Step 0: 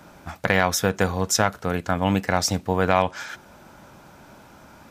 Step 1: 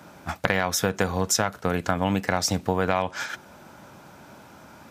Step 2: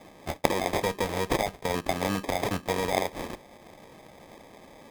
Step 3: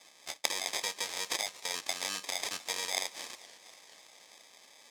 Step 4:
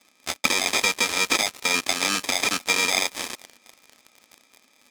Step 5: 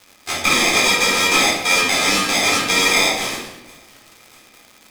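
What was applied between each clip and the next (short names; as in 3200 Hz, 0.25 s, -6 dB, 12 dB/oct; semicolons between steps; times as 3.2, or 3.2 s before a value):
gate -34 dBFS, range -6 dB; HPF 77 Hz; compressor 4:1, threshold -27 dBFS, peak gain reduction 12 dB; gain +6.5 dB
sample-and-hold 31×; added harmonics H 4 -12 dB, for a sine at -1.5 dBFS; tone controls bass -8 dB, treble -2 dB
band-pass 6100 Hz, Q 1.1; warbling echo 0.238 s, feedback 72%, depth 217 cents, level -20 dB; gain +6 dB
small resonant body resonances 240/1300/2400 Hz, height 16 dB, ringing for 40 ms; sample leveller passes 3
shoebox room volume 340 m³, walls mixed, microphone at 3.9 m; crackle 180/s -29 dBFS; gain -2.5 dB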